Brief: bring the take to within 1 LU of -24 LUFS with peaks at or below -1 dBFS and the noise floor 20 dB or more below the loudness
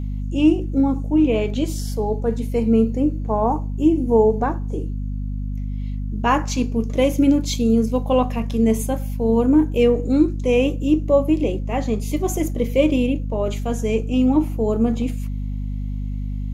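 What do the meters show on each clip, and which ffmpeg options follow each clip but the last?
hum 50 Hz; harmonics up to 250 Hz; hum level -23 dBFS; loudness -20.5 LUFS; peak -4.5 dBFS; loudness target -24.0 LUFS
-> -af "bandreject=f=50:t=h:w=6,bandreject=f=100:t=h:w=6,bandreject=f=150:t=h:w=6,bandreject=f=200:t=h:w=6,bandreject=f=250:t=h:w=6"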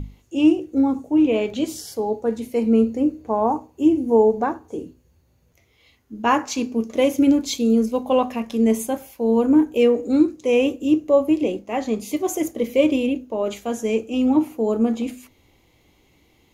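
hum none; loudness -20.5 LUFS; peak -5.0 dBFS; loudness target -24.0 LUFS
-> -af "volume=-3.5dB"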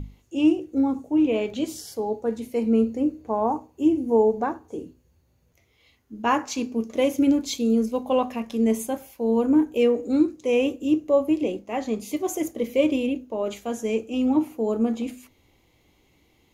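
loudness -24.0 LUFS; peak -8.5 dBFS; noise floor -64 dBFS

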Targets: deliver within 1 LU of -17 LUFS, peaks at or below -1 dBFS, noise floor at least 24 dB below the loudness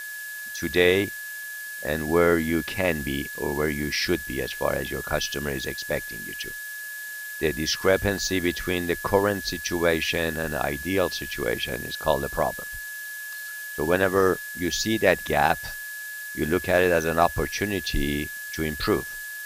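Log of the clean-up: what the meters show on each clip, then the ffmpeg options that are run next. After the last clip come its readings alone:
steady tone 1700 Hz; tone level -34 dBFS; noise floor -36 dBFS; noise floor target -50 dBFS; loudness -25.5 LUFS; peak -4.5 dBFS; loudness target -17.0 LUFS
-> -af "bandreject=f=1.7k:w=30"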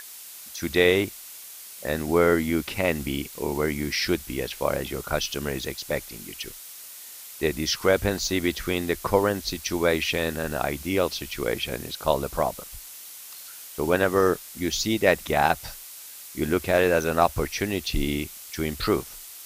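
steady tone none; noise floor -43 dBFS; noise floor target -50 dBFS
-> -af "afftdn=nr=7:nf=-43"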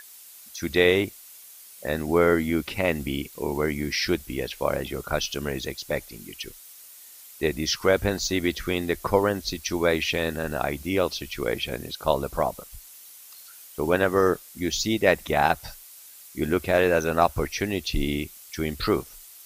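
noise floor -47 dBFS; noise floor target -50 dBFS
-> -af "afftdn=nr=6:nf=-47"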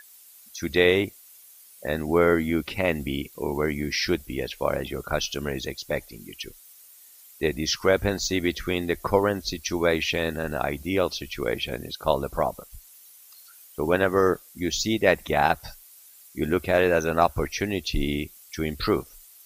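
noise floor -51 dBFS; loudness -25.5 LUFS; peak -4.5 dBFS; loudness target -17.0 LUFS
-> -af "volume=8.5dB,alimiter=limit=-1dB:level=0:latency=1"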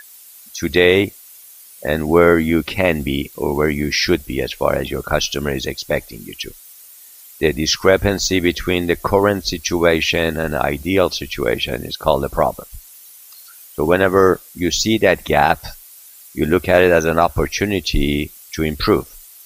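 loudness -17.5 LUFS; peak -1.0 dBFS; noise floor -43 dBFS

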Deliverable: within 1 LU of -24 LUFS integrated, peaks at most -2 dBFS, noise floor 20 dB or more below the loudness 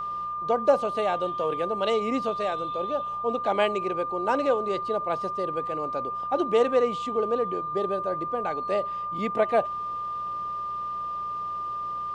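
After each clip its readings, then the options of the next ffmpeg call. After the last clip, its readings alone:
hum 60 Hz; harmonics up to 180 Hz; hum level -54 dBFS; steady tone 1200 Hz; tone level -29 dBFS; loudness -27.0 LUFS; peak -9.0 dBFS; loudness target -24.0 LUFS
-> -af "bandreject=f=60:t=h:w=4,bandreject=f=120:t=h:w=4,bandreject=f=180:t=h:w=4"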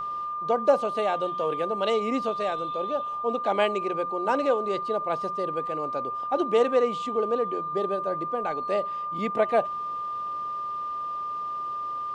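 hum none; steady tone 1200 Hz; tone level -29 dBFS
-> -af "bandreject=f=1.2k:w=30"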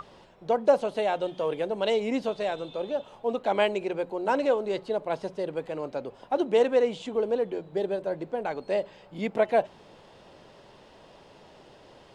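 steady tone none; loudness -28.0 LUFS; peak -9.5 dBFS; loudness target -24.0 LUFS
-> -af "volume=4dB"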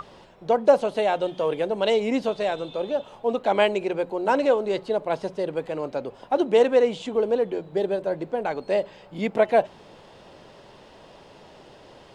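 loudness -24.0 LUFS; peak -5.5 dBFS; noise floor -50 dBFS

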